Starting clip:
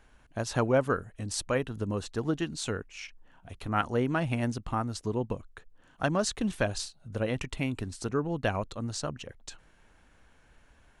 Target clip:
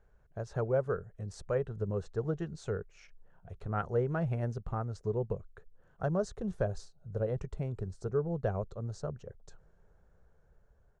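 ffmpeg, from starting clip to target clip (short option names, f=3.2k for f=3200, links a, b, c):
-af "asetnsamples=n=441:p=0,asendcmd='6.04 equalizer g -10',equalizer=f=2.3k:t=o:w=1.2:g=-3.5,dynaudnorm=f=510:g=5:m=3.5dB,firequalizer=gain_entry='entry(180,0);entry(270,-17);entry(400,2);entry(970,-9);entry(1400,-5);entry(2900,-17);entry(6700,-14);entry(10000,-24)':delay=0.05:min_phase=1,volume=-4dB"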